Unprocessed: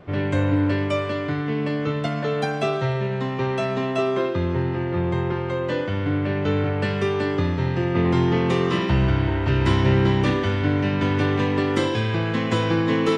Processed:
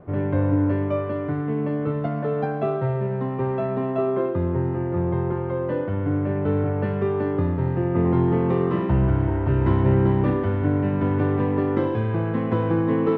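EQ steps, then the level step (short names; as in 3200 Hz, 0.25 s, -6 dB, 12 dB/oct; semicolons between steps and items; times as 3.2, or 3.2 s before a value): LPF 1100 Hz 12 dB/oct; 0.0 dB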